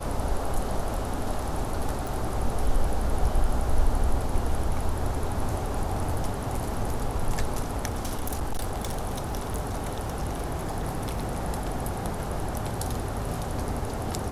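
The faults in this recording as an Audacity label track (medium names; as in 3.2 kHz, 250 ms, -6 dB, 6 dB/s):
2.070000	2.070000	pop
7.880000	11.360000	clipped -24 dBFS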